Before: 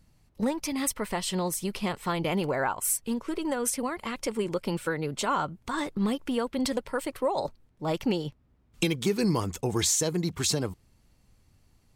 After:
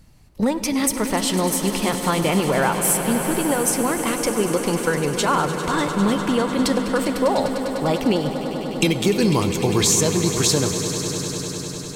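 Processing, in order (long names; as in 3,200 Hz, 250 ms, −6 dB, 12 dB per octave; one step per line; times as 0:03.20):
in parallel at −2.5 dB: downward compressor, threshold −35 dBFS, peak gain reduction 13.5 dB
on the sum: echo that builds up and dies away 100 ms, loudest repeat 5, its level −13.5 dB
convolution reverb RT60 5.3 s, pre-delay 7 ms, DRR 12 dB
level +5.5 dB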